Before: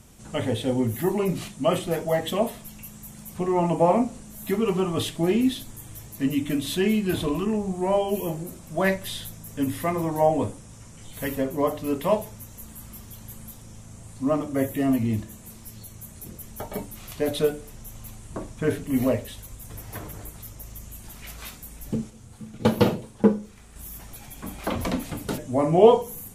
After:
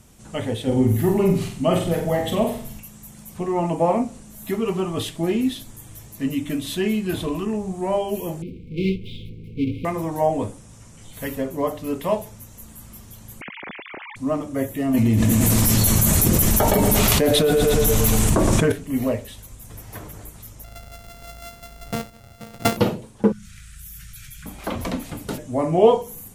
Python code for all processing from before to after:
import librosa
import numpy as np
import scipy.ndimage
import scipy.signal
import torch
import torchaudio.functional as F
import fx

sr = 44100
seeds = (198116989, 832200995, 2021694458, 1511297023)

y = fx.chain(x, sr, fx.low_shelf(hz=200.0, db=10.5),
    fx.room_flutter(wall_m=7.9, rt60_s=0.49), at=(0.67, 2.8))
y = fx.chain(y, sr, fx.halfwave_hold(),
    fx.brickwall_bandstop(low_hz=520.0, high_hz=2100.0),
    fx.air_absorb(metres=420.0), at=(8.42, 9.85))
y = fx.chain(y, sr, fx.sine_speech(),
    fx.peak_eq(hz=2200.0, db=15.0, octaves=0.65),
    fx.env_flatten(amount_pct=50), at=(13.41, 14.16))
y = fx.chain(y, sr, fx.echo_feedback(ms=115, feedback_pct=59, wet_db=-12),
    fx.env_flatten(amount_pct=100), at=(14.94, 18.72))
y = fx.chain(y, sr, fx.sample_sort(block=64),
    fx.high_shelf(hz=11000.0, db=4.5), at=(20.64, 22.77))
y = fx.chain(y, sr, fx.cheby1_bandstop(low_hz=170.0, high_hz=1400.0, order=4),
    fx.env_flatten(amount_pct=70), at=(23.32, 24.46))